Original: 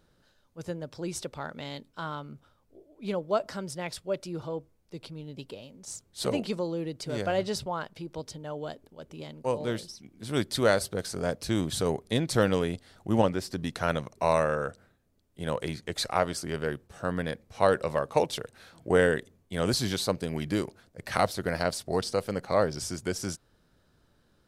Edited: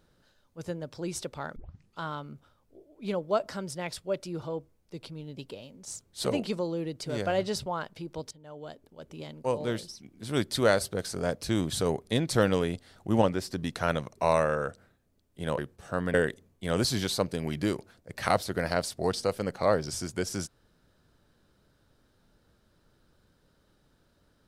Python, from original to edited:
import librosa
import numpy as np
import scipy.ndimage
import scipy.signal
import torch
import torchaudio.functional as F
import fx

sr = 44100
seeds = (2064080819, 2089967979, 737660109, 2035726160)

y = fx.edit(x, sr, fx.tape_start(start_s=1.56, length_s=0.44),
    fx.fade_in_from(start_s=8.31, length_s=0.81, floor_db=-16.0),
    fx.cut(start_s=15.58, length_s=1.11),
    fx.cut(start_s=17.25, length_s=1.78), tone=tone)